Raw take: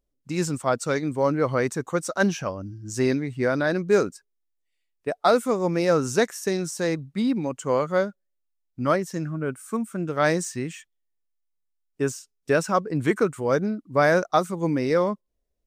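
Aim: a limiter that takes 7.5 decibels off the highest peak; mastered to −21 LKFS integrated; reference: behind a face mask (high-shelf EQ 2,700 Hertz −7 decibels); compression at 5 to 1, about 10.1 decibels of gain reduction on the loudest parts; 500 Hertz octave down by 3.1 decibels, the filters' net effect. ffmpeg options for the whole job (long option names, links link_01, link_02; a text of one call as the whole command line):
ffmpeg -i in.wav -af "equalizer=frequency=500:width_type=o:gain=-3.5,acompressor=threshold=-28dB:ratio=5,alimiter=limit=-22.5dB:level=0:latency=1,highshelf=frequency=2700:gain=-7,volume=14dB" out.wav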